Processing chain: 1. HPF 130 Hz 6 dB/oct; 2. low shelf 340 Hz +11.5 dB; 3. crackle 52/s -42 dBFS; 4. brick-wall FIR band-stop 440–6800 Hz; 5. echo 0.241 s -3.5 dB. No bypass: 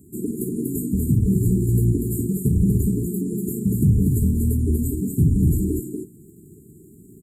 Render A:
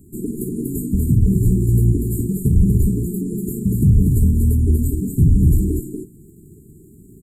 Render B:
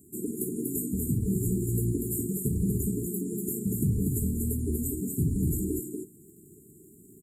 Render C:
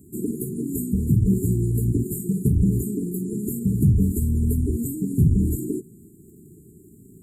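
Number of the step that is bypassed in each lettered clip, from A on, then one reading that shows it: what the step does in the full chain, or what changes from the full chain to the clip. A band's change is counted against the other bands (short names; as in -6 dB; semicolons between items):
1, 125 Hz band +3.5 dB; 2, 8 kHz band +8.0 dB; 5, loudness change -1.5 LU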